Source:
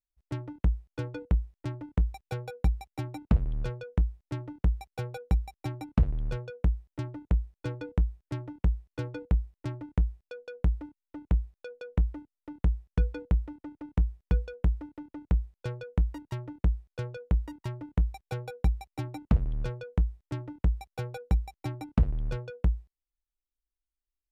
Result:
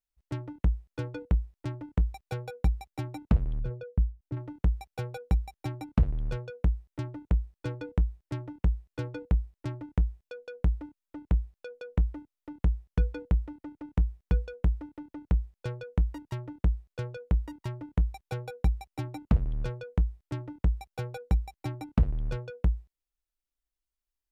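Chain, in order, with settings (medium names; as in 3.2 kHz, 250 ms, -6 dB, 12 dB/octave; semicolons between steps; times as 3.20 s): 3.59–4.37 s: resonances exaggerated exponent 1.5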